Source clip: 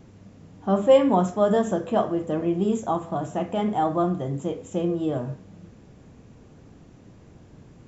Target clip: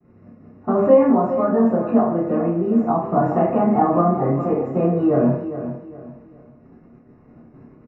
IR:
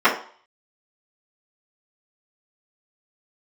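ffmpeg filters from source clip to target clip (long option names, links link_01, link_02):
-filter_complex "[0:a]aemphasis=mode=reproduction:type=riaa,agate=range=-33dB:threshold=-27dB:ratio=3:detection=peak,asettb=1/sr,asplit=3[link_01][link_02][link_03];[link_01]atrim=end=1.104[link_04];[link_02]atrim=start=1.1:end=3.1,asetpts=PTS-STARTPTS,afade=type=in:duration=0.004:curve=qsin,afade=type=out:start_time=1.996:duration=0.004:curve=qsin,acompressor=threshold=-28dB:ratio=3[link_05];[link_03]atrim=start=3.096[link_06];[link_04][link_05]acrossfade=duration=0.004:curve1=hsin:curve2=qsin[link_07];[link_07][link_06]acrossfade=duration=0.004:curve1=qsin:curve2=hsin,alimiter=limit=-15dB:level=0:latency=1,acrossover=split=89|670|1700[link_08][link_09][link_10][link_11];[link_08]acompressor=threshold=-52dB:ratio=4[link_12];[link_09]acompressor=threshold=-23dB:ratio=4[link_13];[link_10]acompressor=threshold=-33dB:ratio=4[link_14];[link_11]acompressor=threshold=-56dB:ratio=4[link_15];[link_12][link_13][link_14][link_15]amix=inputs=4:normalize=0,asuperstop=centerf=3300:order=12:qfactor=3.9,asplit=2[link_16][link_17];[link_17]adelay=30,volume=-5dB[link_18];[link_16][link_18]amix=inputs=2:normalize=0,aecho=1:1:408|816|1224:0.282|0.0874|0.0271[link_19];[1:a]atrim=start_sample=2205[link_20];[link_19][link_20]afir=irnorm=-1:irlink=0,volume=-11.5dB"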